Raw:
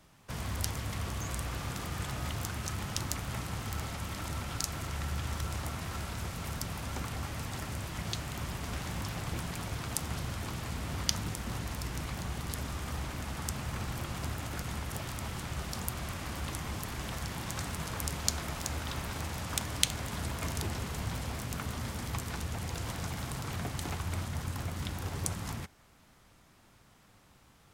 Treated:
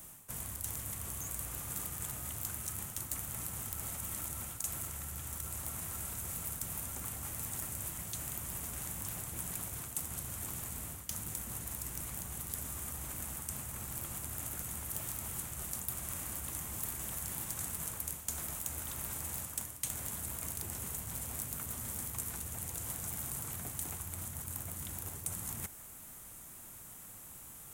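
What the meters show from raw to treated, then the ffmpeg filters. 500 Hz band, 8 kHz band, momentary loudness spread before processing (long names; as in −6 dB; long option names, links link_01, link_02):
−9.5 dB, +2.5 dB, 3 LU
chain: -af "areverse,acompressor=threshold=-47dB:ratio=6,areverse,aexciter=amount=4:drive=9.7:freq=7000,volume=28.5dB,asoftclip=hard,volume=-28.5dB,volume=3dB"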